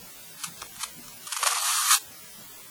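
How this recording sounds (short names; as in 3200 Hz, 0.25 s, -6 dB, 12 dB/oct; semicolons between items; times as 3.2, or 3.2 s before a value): chopped level 2.1 Hz, depth 65%, duty 10%; a quantiser's noise floor 8-bit, dither triangular; WMA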